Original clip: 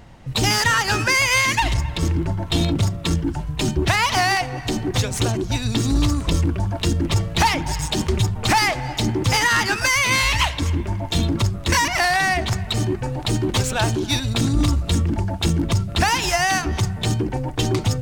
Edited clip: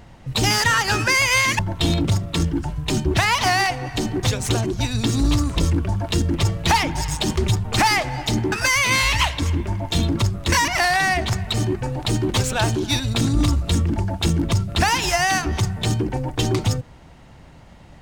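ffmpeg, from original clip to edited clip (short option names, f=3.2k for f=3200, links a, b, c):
-filter_complex "[0:a]asplit=3[a][b][c];[a]atrim=end=1.592[d];[b]atrim=start=2.298:end=9.232[e];[c]atrim=start=9.718[f];[d][e]acrossfade=d=0.004:c1=hsin:c2=hsin[g];[g][f]acrossfade=d=0.004:c1=hsin:c2=hsin"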